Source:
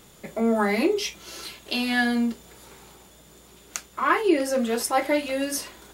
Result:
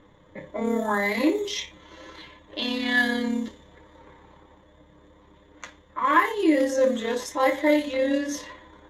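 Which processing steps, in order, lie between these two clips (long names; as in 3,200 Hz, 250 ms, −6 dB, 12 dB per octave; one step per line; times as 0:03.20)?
time stretch by overlap-add 1.5×, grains 59 ms
low-pass that shuts in the quiet parts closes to 1,600 Hz, open at −18.5 dBFS
EQ curve with evenly spaced ripples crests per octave 1.1, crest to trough 10 dB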